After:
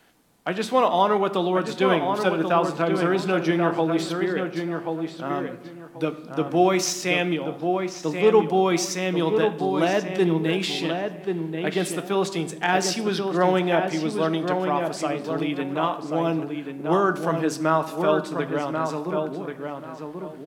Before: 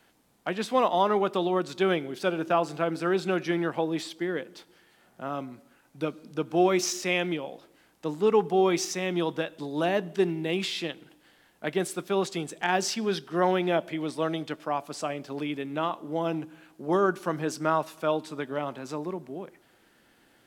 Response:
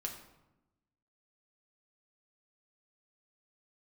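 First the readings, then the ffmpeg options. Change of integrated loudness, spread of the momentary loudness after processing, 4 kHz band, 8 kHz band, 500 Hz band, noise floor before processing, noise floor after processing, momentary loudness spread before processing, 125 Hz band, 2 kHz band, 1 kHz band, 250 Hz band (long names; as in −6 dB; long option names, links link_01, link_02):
+4.5 dB, 9 LU, +4.5 dB, +4.0 dB, +5.0 dB, −63 dBFS, −40 dBFS, 12 LU, +7.0 dB, +5.0 dB, +5.0 dB, +5.5 dB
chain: -filter_complex "[0:a]asplit=2[link_01][link_02];[link_02]adelay=1085,lowpass=frequency=2300:poles=1,volume=-5dB,asplit=2[link_03][link_04];[link_04]adelay=1085,lowpass=frequency=2300:poles=1,volume=0.23,asplit=2[link_05][link_06];[link_06]adelay=1085,lowpass=frequency=2300:poles=1,volume=0.23[link_07];[link_01][link_03][link_05][link_07]amix=inputs=4:normalize=0,asplit=2[link_08][link_09];[1:a]atrim=start_sample=2205[link_10];[link_09][link_10]afir=irnorm=-1:irlink=0,volume=-2.5dB[link_11];[link_08][link_11]amix=inputs=2:normalize=0"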